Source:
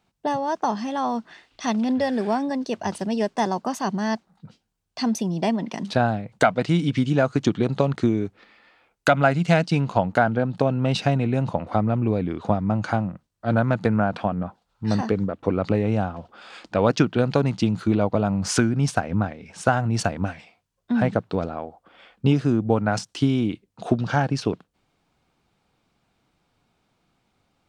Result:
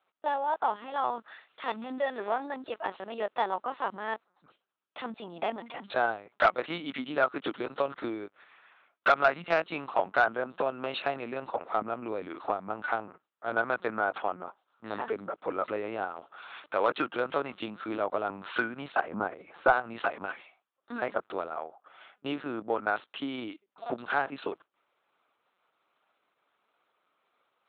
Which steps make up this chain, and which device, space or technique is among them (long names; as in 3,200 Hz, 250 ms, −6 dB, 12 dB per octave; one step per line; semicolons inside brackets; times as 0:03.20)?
talking toy (linear-prediction vocoder at 8 kHz pitch kept; high-pass filter 480 Hz 12 dB per octave; parametric band 1,300 Hz +7 dB 0.52 octaves; soft clipping −7.5 dBFS, distortion −20 dB)
0:19.08–0:19.73: tilt shelving filter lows +6 dB, about 1,500 Hz
level −4 dB